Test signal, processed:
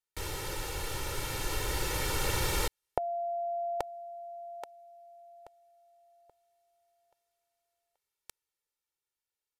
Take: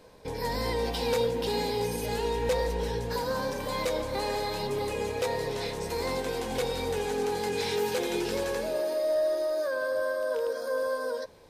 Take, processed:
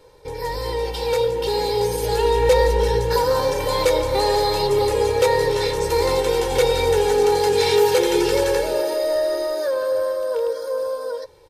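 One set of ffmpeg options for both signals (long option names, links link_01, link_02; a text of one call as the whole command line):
ffmpeg -i in.wav -af "aecho=1:1:2.2:0.9,dynaudnorm=framelen=220:gausssize=17:maxgain=8dB,aresample=32000,aresample=44100" out.wav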